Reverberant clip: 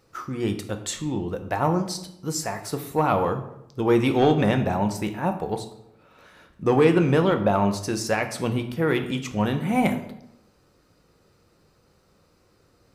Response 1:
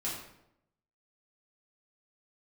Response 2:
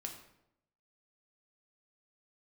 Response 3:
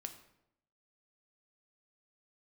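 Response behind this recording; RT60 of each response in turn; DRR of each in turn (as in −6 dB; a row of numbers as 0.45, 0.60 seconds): 3; 0.80, 0.80, 0.80 seconds; −7.0, 2.0, 6.5 decibels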